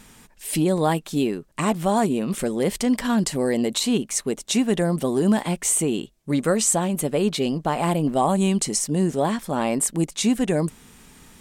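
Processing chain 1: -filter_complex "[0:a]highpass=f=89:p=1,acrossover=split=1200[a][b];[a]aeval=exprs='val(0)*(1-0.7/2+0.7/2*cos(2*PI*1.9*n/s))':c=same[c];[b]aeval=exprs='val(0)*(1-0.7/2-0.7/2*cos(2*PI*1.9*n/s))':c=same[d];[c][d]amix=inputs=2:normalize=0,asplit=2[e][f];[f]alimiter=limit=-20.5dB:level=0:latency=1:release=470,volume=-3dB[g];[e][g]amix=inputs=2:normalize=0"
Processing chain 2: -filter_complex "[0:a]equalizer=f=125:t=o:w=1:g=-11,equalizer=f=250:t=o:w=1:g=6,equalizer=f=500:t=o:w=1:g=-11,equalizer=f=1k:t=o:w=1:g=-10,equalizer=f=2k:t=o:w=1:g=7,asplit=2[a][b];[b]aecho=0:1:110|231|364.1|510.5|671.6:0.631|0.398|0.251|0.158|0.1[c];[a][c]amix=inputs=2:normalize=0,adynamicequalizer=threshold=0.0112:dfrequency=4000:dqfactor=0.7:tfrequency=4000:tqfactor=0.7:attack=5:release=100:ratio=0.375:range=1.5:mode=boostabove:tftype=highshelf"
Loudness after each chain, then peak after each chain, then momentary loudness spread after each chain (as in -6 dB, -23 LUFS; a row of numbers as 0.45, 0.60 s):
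-23.5, -21.0 LUFS; -8.5, -4.5 dBFS; 6, 7 LU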